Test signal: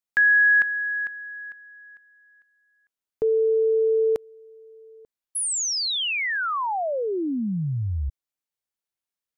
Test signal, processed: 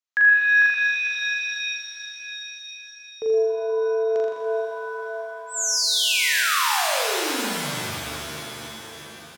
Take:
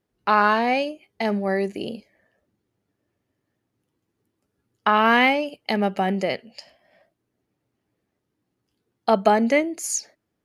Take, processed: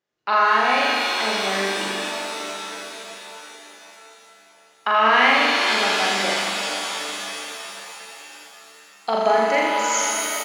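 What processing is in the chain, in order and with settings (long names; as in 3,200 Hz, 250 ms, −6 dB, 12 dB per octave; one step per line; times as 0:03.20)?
high-pass filter 850 Hz 6 dB per octave
on a send: flutter between parallel walls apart 7 metres, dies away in 1.1 s
on the sum: downsampling to 16,000 Hz
reverb with rising layers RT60 3.9 s, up +7 semitones, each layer −2 dB, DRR 3 dB
level −1 dB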